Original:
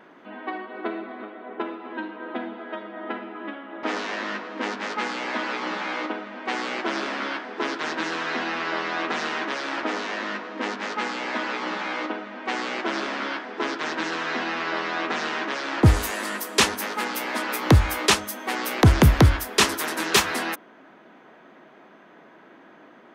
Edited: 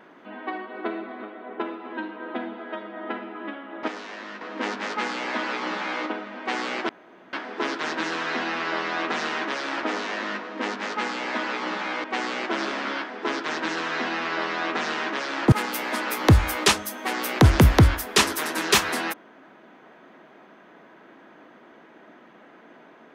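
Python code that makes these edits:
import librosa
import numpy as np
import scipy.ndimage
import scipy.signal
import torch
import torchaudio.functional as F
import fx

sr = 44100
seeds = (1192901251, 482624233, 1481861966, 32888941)

y = fx.edit(x, sr, fx.clip_gain(start_s=3.88, length_s=0.53, db=-8.0),
    fx.room_tone_fill(start_s=6.89, length_s=0.44),
    fx.cut(start_s=12.04, length_s=0.35),
    fx.cut(start_s=15.87, length_s=1.07), tone=tone)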